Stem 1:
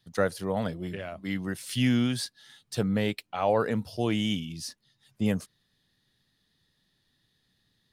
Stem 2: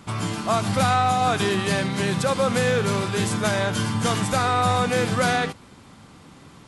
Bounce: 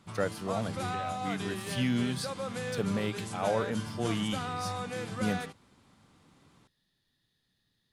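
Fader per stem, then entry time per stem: −5.0, −15.0 decibels; 0.00, 0.00 seconds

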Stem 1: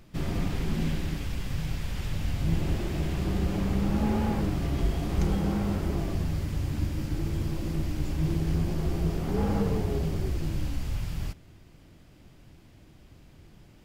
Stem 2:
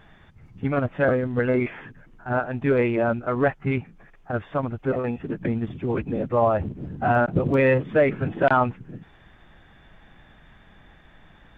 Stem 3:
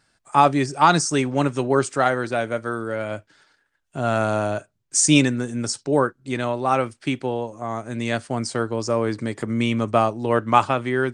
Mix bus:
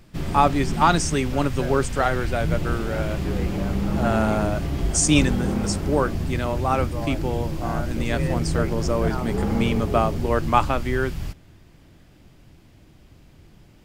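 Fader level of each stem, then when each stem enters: +2.5, −13.5, −2.5 decibels; 0.00, 0.60, 0.00 seconds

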